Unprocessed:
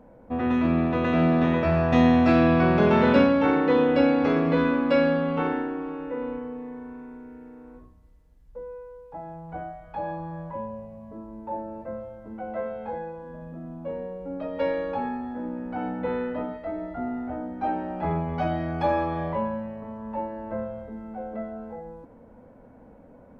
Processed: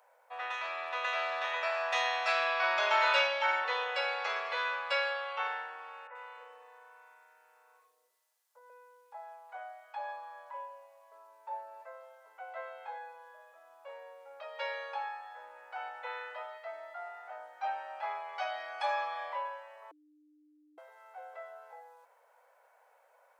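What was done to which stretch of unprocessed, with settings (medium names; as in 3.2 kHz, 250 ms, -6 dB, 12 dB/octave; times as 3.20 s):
2.63–3.64 s: comb 3.2 ms, depth 80%
6.07–8.70 s: three bands offset in time mids, highs, lows 80/290 ms, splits 480/2200 Hz
19.91–20.78 s: bleep 301 Hz -15 dBFS
whole clip: Bessel high-pass 1.1 kHz, order 8; treble shelf 4.2 kHz +10 dB; trim -1.5 dB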